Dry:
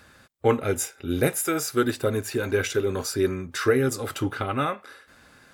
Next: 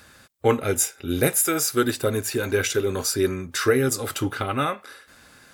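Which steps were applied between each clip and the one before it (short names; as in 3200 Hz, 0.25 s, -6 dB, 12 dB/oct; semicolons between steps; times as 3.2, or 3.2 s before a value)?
high shelf 3800 Hz +7 dB; gain +1 dB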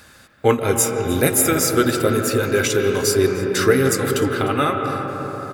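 echo 0.302 s -20 dB; on a send at -3.5 dB: reverb RT60 4.6 s, pre-delay 0.11 s; on the sum: gain +3.5 dB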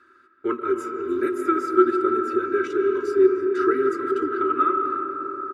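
double band-pass 700 Hz, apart 1.8 oct; comb 3.1 ms, depth 68%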